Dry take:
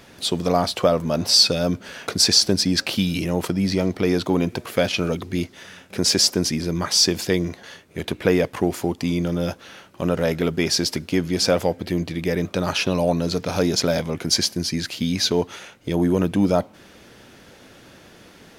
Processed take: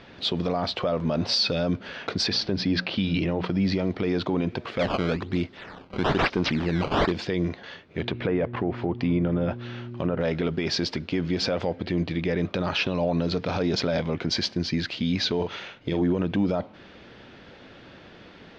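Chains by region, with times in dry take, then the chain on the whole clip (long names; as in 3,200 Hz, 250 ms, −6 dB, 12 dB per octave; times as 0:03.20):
0:02.27–0:03.50: parametric band 7,600 Hz −14.5 dB 0.66 octaves + mains-hum notches 60/120/180/240 Hz
0:04.79–0:07.12: sample-and-hold swept by an LFO 14×, swing 160% 1.1 Hz + hard clipping −12.5 dBFS
0:07.98–0:10.19: treble cut that deepens with the level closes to 1,900 Hz, closed at −18.5 dBFS + hum with harmonics 120 Hz, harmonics 3, −37 dBFS
0:15.35–0:16.02: dynamic equaliser 4,300 Hz, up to +3 dB, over −46 dBFS, Q 0.75 + double-tracking delay 44 ms −7.5 dB
whole clip: low-pass filter 4,200 Hz 24 dB per octave; brickwall limiter −15 dBFS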